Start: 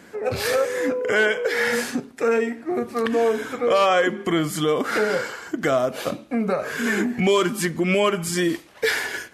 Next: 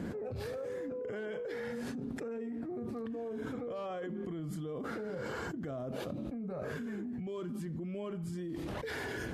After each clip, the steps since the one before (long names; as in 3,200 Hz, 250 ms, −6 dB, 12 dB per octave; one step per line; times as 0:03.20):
drawn EQ curve 120 Hz 0 dB, 2,200 Hz −22 dB, 3,500 Hz −20 dB, 6,200 Hz −24 dB
brickwall limiter −27 dBFS, peak gain reduction 9 dB
envelope flattener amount 100%
level −8.5 dB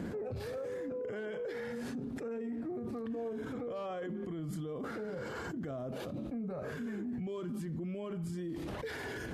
brickwall limiter −39 dBFS, peak gain reduction 11 dB
level +6 dB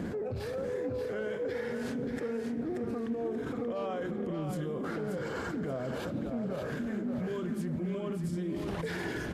repeating echo 581 ms, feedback 33%, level −6 dB
convolution reverb RT60 4.3 s, pre-delay 28 ms, DRR 16 dB
highs frequency-modulated by the lows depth 0.12 ms
level +3.5 dB